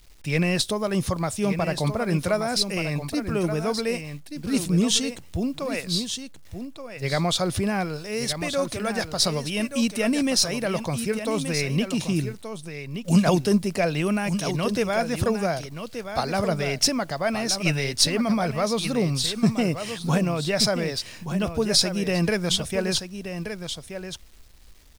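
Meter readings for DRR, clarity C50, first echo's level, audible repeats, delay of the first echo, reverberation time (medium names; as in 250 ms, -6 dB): no reverb, no reverb, -9.0 dB, 1, 1177 ms, no reverb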